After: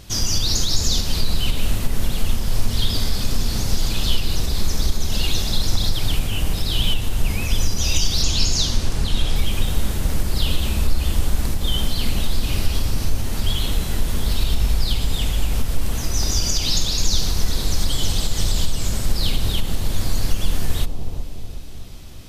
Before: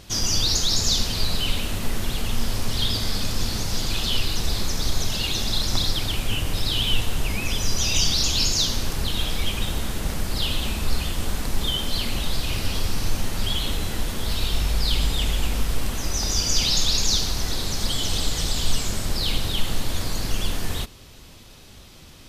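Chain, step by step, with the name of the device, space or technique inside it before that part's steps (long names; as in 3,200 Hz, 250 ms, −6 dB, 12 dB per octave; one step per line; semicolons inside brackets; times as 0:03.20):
0:08.22–0:09.36: low-pass filter 9,900 Hz 12 dB per octave
ASMR close-microphone chain (low-shelf EQ 150 Hz +6.5 dB; downward compressor, threshold −13 dBFS, peak gain reduction 6.5 dB; high-shelf EQ 8,000 Hz +5 dB)
bucket-brigade delay 369 ms, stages 2,048, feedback 50%, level −5 dB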